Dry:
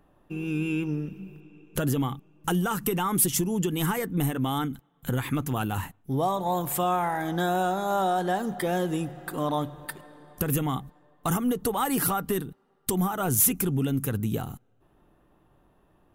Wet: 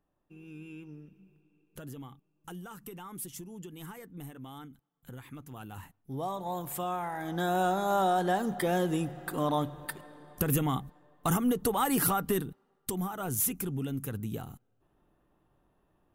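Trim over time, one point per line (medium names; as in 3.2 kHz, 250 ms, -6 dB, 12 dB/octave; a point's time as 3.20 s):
5.44 s -18 dB
6.31 s -8.5 dB
7.11 s -8.5 dB
7.65 s -1.5 dB
12.48 s -1.5 dB
12.97 s -8 dB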